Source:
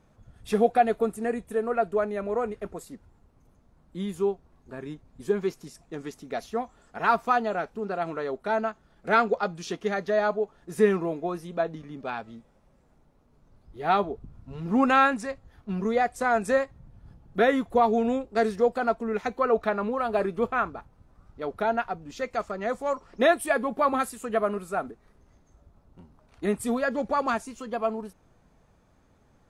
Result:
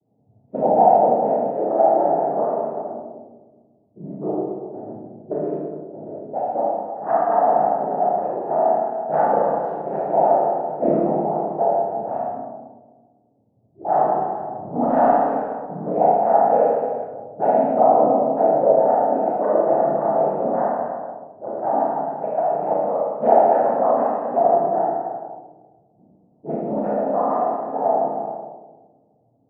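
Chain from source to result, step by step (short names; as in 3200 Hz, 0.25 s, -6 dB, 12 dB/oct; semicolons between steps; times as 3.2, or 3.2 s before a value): noise vocoder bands 12; in parallel at -5 dB: hard clip -18.5 dBFS, distortion -11 dB; on the sum: synth low-pass 720 Hz, resonance Q 4.9; Schroeder reverb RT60 1.9 s, combs from 26 ms, DRR -7 dB; low-pass opened by the level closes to 370 Hz, open at -7 dBFS; gain -10.5 dB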